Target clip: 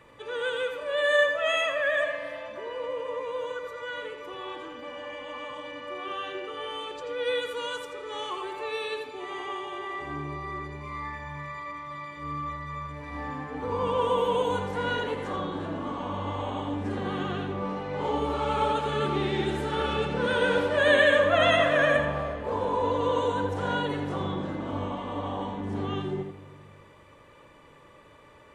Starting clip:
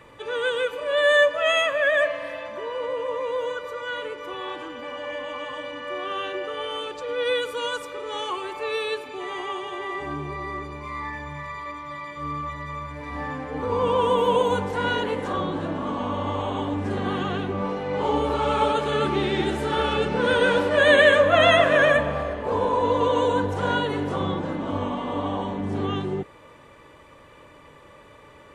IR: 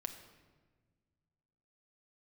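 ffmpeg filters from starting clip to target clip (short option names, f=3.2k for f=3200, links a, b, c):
-filter_complex "[0:a]asplit=2[a][b];[1:a]atrim=start_sample=2205,lowpass=8k,adelay=83[c];[b][c]afir=irnorm=-1:irlink=0,volume=-4.5dB[d];[a][d]amix=inputs=2:normalize=0,volume=-5.5dB"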